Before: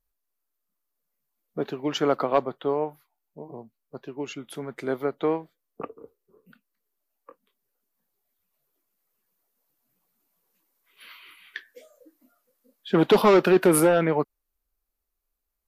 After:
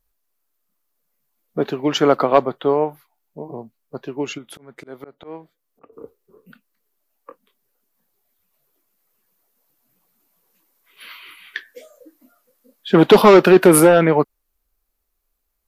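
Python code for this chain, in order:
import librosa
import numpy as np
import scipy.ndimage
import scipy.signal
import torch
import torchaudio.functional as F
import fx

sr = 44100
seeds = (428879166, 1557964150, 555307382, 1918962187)

y = fx.auto_swell(x, sr, attack_ms=594.0, at=(4.37, 5.92), fade=0.02)
y = y * librosa.db_to_amplitude(8.0)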